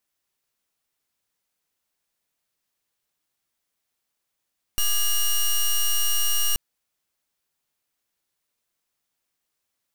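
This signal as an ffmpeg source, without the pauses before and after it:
-f lavfi -i "aevalsrc='0.0944*(2*lt(mod(2860*t,1),0.1)-1)':d=1.78:s=44100"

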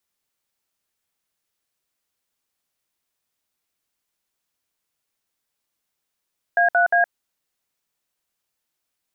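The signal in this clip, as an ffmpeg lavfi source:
-f lavfi -i "aevalsrc='0.15*clip(min(mod(t,0.177),0.117-mod(t,0.177))/0.002,0,1)*(eq(floor(t/0.177),0)*(sin(2*PI*697*mod(t,0.177))+sin(2*PI*1633*mod(t,0.177)))+eq(floor(t/0.177),1)*(sin(2*PI*697*mod(t,0.177))+sin(2*PI*1477*mod(t,0.177)))+eq(floor(t/0.177),2)*(sin(2*PI*697*mod(t,0.177))+sin(2*PI*1633*mod(t,0.177))))':d=0.531:s=44100"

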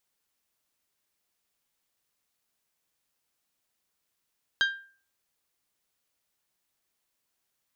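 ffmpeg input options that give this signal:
-f lavfi -i "aevalsrc='0.112*pow(10,-3*t/0.43)*sin(2*PI*1590*t)+0.0631*pow(10,-3*t/0.265)*sin(2*PI*3180*t)+0.0355*pow(10,-3*t/0.233)*sin(2*PI*3816*t)+0.02*pow(10,-3*t/0.199)*sin(2*PI*4770*t)+0.0112*pow(10,-3*t/0.163)*sin(2*PI*6360*t)':d=0.89:s=44100"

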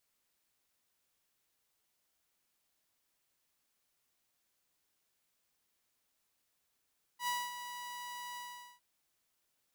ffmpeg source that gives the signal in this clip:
-f lavfi -i "aevalsrc='0.0335*(2*mod(976*t,1)-1)':d=1.609:s=44100,afade=t=in:d=0.087,afade=t=out:st=0.087:d=0.231:silence=0.299,afade=t=out:st=1.18:d=0.429"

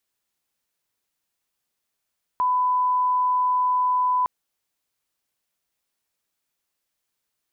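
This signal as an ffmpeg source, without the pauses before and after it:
-f lavfi -i "sine=f=1000:d=1.86:r=44100,volume=0.06dB"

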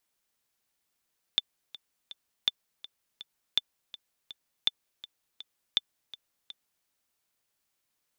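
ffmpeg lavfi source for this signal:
-f lavfi -i "aevalsrc='pow(10,(-10.5-18.5*gte(mod(t,3*60/164),60/164))/20)*sin(2*PI*3530*mod(t,60/164))*exp(-6.91*mod(t,60/164)/0.03)':d=5.48:s=44100"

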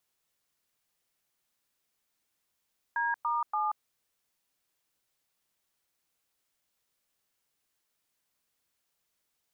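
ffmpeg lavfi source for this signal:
-f lavfi -i "aevalsrc='0.0335*clip(min(mod(t,0.287),0.182-mod(t,0.287))/0.002,0,1)*(eq(floor(t/0.287),0)*(sin(2*PI*941*mod(t,0.287))+sin(2*PI*1633*mod(t,0.287)))+eq(floor(t/0.287),1)*(sin(2*PI*941*mod(t,0.287))+sin(2*PI*1209*mod(t,0.287)))+eq(floor(t/0.287),2)*(sin(2*PI*852*mod(t,0.287))+sin(2*PI*1209*mod(t,0.287))))':d=0.861:s=44100"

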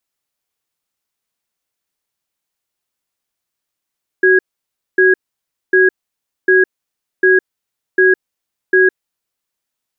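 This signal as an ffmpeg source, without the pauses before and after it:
-f lavfi -i "aevalsrc='0.335*(sin(2*PI*374*t)+sin(2*PI*1650*t))*clip(min(mod(t,0.75),0.16-mod(t,0.75))/0.005,0,1)':d=4.71:s=44100"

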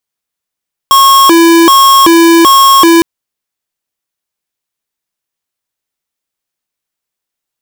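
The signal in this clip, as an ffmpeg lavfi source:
-f lavfi -i "aevalsrc='0.631*(2*lt(mod((712*t+378/1.3*(0.5-abs(mod(1.3*t,1)-0.5))),1),0.5)-1)':d=2.11:s=44100"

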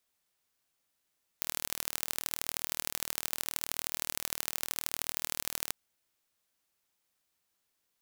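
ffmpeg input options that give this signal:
-f lavfi -i "aevalsrc='0.668*eq(mod(n,1125),0)*(0.5+0.5*eq(mod(n,3375),0))':d=4.31:s=44100"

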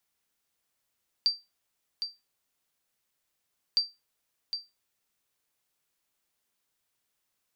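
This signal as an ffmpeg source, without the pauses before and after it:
-f lavfi -i "aevalsrc='0.15*(sin(2*PI*4680*mod(t,2.51))*exp(-6.91*mod(t,2.51)/0.22)+0.376*sin(2*PI*4680*max(mod(t,2.51)-0.76,0))*exp(-6.91*max(mod(t,2.51)-0.76,0)/0.22))':d=5.02:s=44100"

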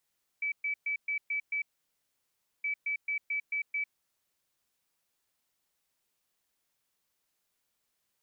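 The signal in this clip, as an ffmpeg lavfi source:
-f lavfi -i "aevalsrc='0.0355*sin(2*PI*2300*t)*clip(min(mod(mod(t,2.22),0.22),0.1-mod(mod(t,2.22),0.22))/0.005,0,1)*lt(mod(t,2.22),1.32)':d=4.44:s=44100"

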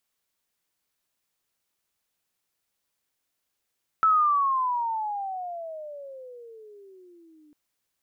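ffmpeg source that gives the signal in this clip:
-f lavfi -i "aevalsrc='pow(10,(-16-37*t/3.5)/20)*sin(2*PI*1320*3.5/(-26*log(2)/12)*(exp(-26*log(2)/12*t/3.5)-1))':d=3.5:s=44100"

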